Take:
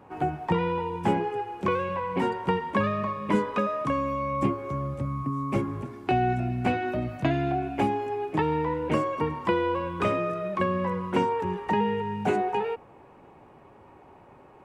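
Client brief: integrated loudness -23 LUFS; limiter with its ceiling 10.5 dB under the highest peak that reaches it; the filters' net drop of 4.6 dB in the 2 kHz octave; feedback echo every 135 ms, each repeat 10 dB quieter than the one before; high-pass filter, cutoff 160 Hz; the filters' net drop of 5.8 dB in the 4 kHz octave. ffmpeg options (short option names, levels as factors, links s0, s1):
-af "highpass=160,equalizer=f=2000:t=o:g=-4.5,equalizer=f=4000:t=o:g=-6.5,alimiter=limit=0.0794:level=0:latency=1,aecho=1:1:135|270|405|540:0.316|0.101|0.0324|0.0104,volume=2.66"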